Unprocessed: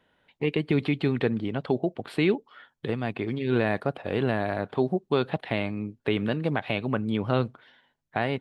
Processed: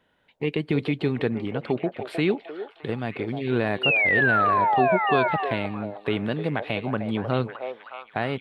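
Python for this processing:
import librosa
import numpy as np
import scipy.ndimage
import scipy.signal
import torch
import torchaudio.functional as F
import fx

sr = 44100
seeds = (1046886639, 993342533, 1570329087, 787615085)

y = fx.spec_paint(x, sr, seeds[0], shape='fall', start_s=3.83, length_s=1.14, low_hz=600.0, high_hz=2900.0, level_db=-21.0)
y = fx.echo_stepped(y, sr, ms=309, hz=620.0, octaves=0.7, feedback_pct=70, wet_db=-4)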